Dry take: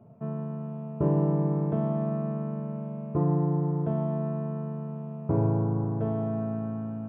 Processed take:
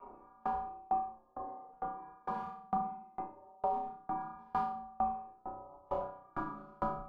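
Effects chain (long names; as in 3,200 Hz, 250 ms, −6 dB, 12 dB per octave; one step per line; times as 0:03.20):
gate on every frequency bin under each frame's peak −15 dB weak
reverb reduction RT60 2 s
gate on every frequency bin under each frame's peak −30 dB strong
parametric band 1,200 Hz +15 dB 0.76 octaves
compressor whose output falls as the input rises −48 dBFS, ratio −1
gain into a clipping stage and back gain 36 dB
flanger 1.3 Hz, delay 6.9 ms, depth 8.1 ms, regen −30%
frequency shifter −120 Hz
flutter between parallel walls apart 5.4 metres, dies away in 0.89 s
rectangular room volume 91 cubic metres, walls mixed, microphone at 2.6 metres
tremolo with a ramp in dB decaying 2.2 Hz, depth 32 dB
level +1.5 dB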